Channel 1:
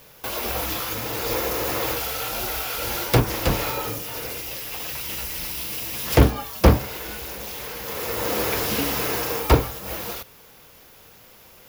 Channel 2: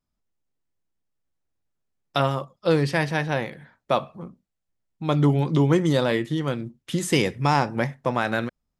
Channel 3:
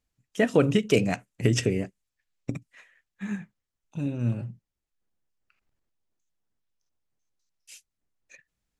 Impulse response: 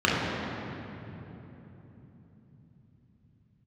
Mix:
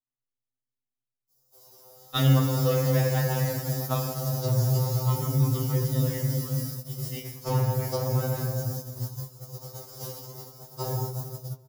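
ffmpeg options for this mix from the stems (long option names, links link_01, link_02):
-filter_complex "[0:a]firequalizer=gain_entry='entry(150,0);entry(260,-12);entry(400,0);entry(2500,-19);entry(5100,13)':delay=0.05:min_phase=1,acrossover=split=4700[link_01][link_02];[link_02]acompressor=threshold=-20dB:ratio=4:attack=1:release=60[link_03];[link_01][link_03]amix=inputs=2:normalize=0,equalizer=frequency=63:width_type=o:width=0.23:gain=-6.5,adelay=1300,volume=-12dB,asplit=2[link_04][link_05];[link_05]volume=-14.5dB[link_06];[1:a]volume=-1dB,afade=type=out:start_time=2.23:duration=0.66:silence=0.398107,afade=type=out:start_time=5.59:duration=0.21:silence=0.421697,asplit=2[link_07][link_08];[link_08]volume=-17.5dB[link_09];[3:a]atrim=start_sample=2205[link_10];[link_06][link_09]amix=inputs=2:normalize=0[link_11];[link_11][link_10]afir=irnorm=-1:irlink=0[link_12];[link_04][link_07][link_12]amix=inputs=3:normalize=0,agate=range=-17dB:threshold=-28dB:ratio=16:detection=peak,afftfilt=real='re*2.45*eq(mod(b,6),0)':imag='im*2.45*eq(mod(b,6),0)':win_size=2048:overlap=0.75"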